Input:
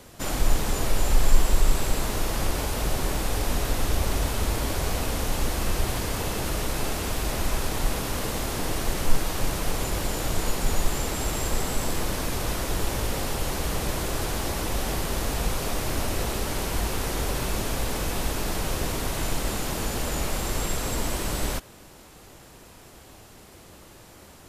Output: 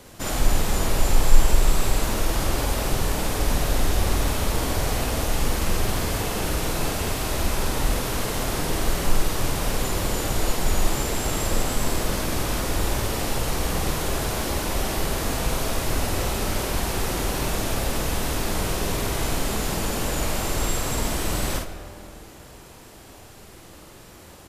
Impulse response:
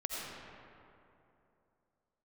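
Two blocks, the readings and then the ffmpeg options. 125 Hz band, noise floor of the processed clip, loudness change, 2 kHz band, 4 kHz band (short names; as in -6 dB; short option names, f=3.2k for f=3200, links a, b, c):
+2.5 dB, -45 dBFS, +2.5 dB, +3.0 dB, +2.5 dB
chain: -filter_complex "[0:a]asplit=2[a][b];[b]adelay=49,volume=-3.5dB[c];[a][c]amix=inputs=2:normalize=0,asplit=2[d][e];[1:a]atrim=start_sample=2205[f];[e][f]afir=irnorm=-1:irlink=0,volume=-10dB[g];[d][g]amix=inputs=2:normalize=0,volume=-1dB"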